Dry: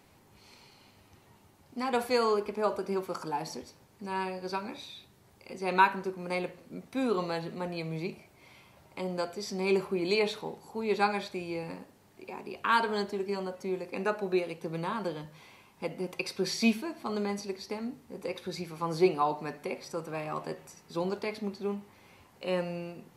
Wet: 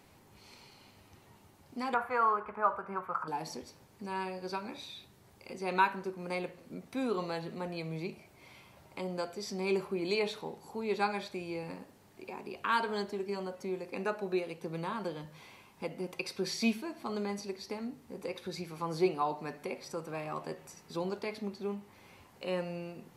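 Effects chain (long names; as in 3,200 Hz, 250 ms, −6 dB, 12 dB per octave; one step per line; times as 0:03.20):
0:01.94–0:03.28: drawn EQ curve 130 Hz 0 dB, 320 Hz −12 dB, 1,300 Hz +12 dB, 4,900 Hz −23 dB, 13,000 Hz −15 dB
in parallel at −1.5 dB: downward compressor, threshold −43 dBFS, peak gain reduction 23.5 dB
on the sum: level −5 dB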